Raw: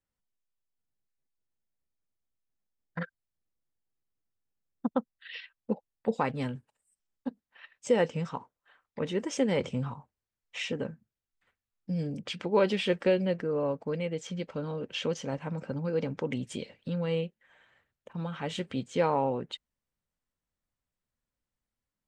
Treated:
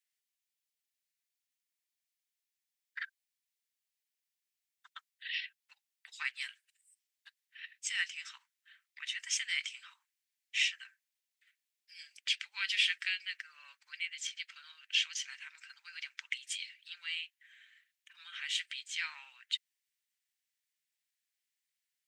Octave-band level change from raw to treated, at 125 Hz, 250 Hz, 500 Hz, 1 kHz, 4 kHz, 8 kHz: below −40 dB, below −40 dB, below −40 dB, −21.5 dB, +6.0 dB, +6.0 dB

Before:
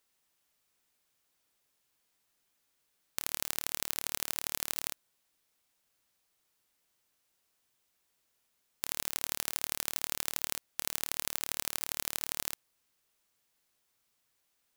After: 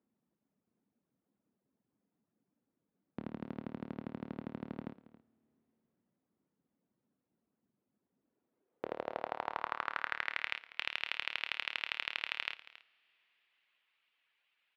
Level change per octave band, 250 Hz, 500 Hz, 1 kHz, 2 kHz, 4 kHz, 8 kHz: +7.5 dB, +4.0 dB, +4.0 dB, +4.5 dB, −2.5 dB, below −30 dB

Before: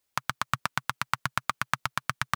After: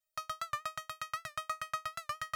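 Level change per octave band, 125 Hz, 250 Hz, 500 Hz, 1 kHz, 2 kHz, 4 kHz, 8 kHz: −19.0 dB, below −20 dB, −3.5 dB, −7.5 dB, −12.5 dB, −9.5 dB, −9.0 dB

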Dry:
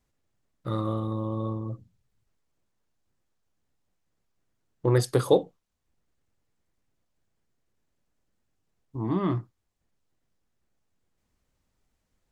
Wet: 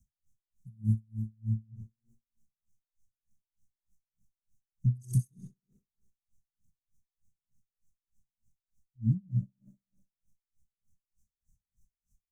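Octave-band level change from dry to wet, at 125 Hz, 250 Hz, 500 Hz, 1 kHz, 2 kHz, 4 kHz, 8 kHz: −0.5 dB, −7.5 dB, below −40 dB, below −40 dB, below −35 dB, below −30 dB, −8.5 dB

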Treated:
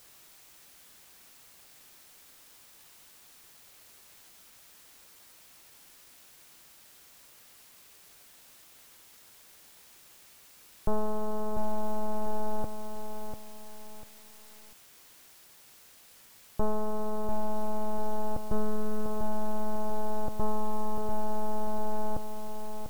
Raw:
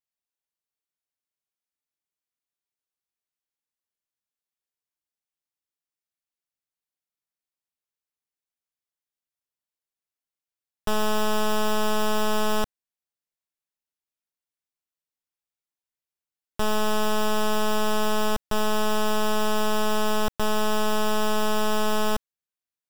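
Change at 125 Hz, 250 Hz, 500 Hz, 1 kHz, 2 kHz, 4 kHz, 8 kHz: −2.5, −7.0, −8.0, −8.0, −19.5, −21.0, −13.5 decibels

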